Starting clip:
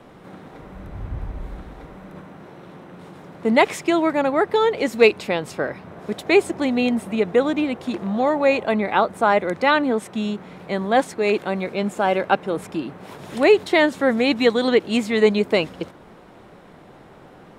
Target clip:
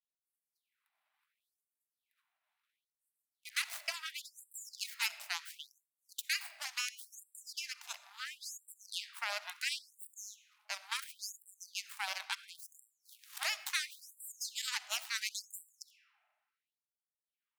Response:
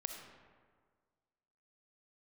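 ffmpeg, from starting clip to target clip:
-filter_complex "[0:a]aderivative,agate=range=-33dB:threshold=-53dB:ratio=3:detection=peak,equalizer=f=100:t=o:w=0.67:g=-10,equalizer=f=2.5k:t=o:w=0.67:g=4,equalizer=f=6.3k:t=o:w=0.67:g=-11,acrossover=split=720|4400[a][b][c];[a]acompressor=threshold=-51dB:ratio=4[d];[b]acompressor=threshold=-42dB:ratio=4[e];[c]acompressor=threshold=-46dB:ratio=4[f];[d][e][f]amix=inputs=3:normalize=0,aeval=exprs='0.0631*(cos(1*acos(clip(val(0)/0.0631,-1,1)))-cos(1*PI/2))+0.02*(cos(6*acos(clip(val(0)/0.0631,-1,1)))-cos(6*PI/2))+0.00794*(cos(7*acos(clip(val(0)/0.0631,-1,1)))-cos(7*PI/2))+0.000708*(cos(8*acos(clip(val(0)/0.0631,-1,1)))-cos(8*PI/2))':c=same,asplit=2[g][h];[1:a]atrim=start_sample=2205[i];[h][i]afir=irnorm=-1:irlink=0,volume=-4.5dB[j];[g][j]amix=inputs=2:normalize=0,afftfilt=real='re*gte(b*sr/1024,560*pow(7500/560,0.5+0.5*sin(2*PI*0.72*pts/sr)))':imag='im*gte(b*sr/1024,560*pow(7500/560,0.5+0.5*sin(2*PI*0.72*pts/sr)))':win_size=1024:overlap=0.75,volume=1dB"

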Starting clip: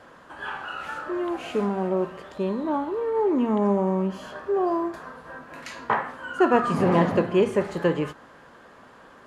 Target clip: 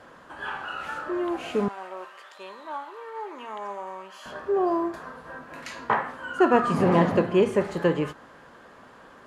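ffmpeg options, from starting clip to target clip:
-filter_complex "[0:a]asettb=1/sr,asplit=3[a][b][c];[a]atrim=end=1.684[d];[b]atrim=start=1.68:end=4.26,asetpts=PTS-STARTPTS,afade=t=in:d=0.004:c=qsin,afade=t=out:st=2.576:d=0.004:c=qsin,highpass=1.1k[e];[c]atrim=start=4.256[f];[d][e]acrossfade=d=0.004:c1=hsin:c2=qsin[g];[g][f]acrossfade=d=0.004:c1=qsin:c2=hsin"

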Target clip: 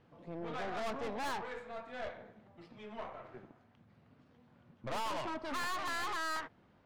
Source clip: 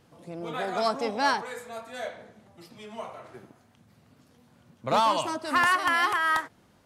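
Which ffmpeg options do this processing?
-af "lowpass=2.8k,aeval=exprs='(tanh(50.1*val(0)+0.6)-tanh(0.6))/50.1':c=same,volume=-2dB"

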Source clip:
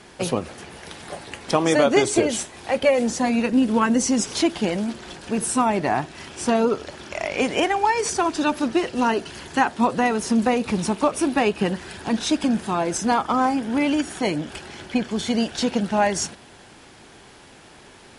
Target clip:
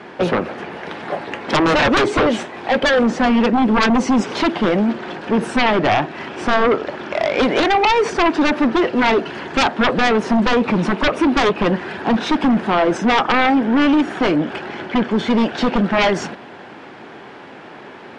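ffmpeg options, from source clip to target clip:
-af "highpass=190,lowpass=2.1k,aeval=exprs='0.562*sin(PI/2*5.01*val(0)/0.562)':c=same,volume=-6dB"

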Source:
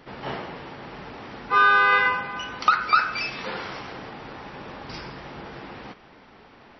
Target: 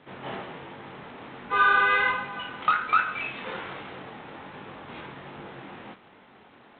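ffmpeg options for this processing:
-af "flanger=delay=20:depth=5.4:speed=1.3,highpass=95" -ar 8000 -c:a adpcm_g726 -b:a 24k

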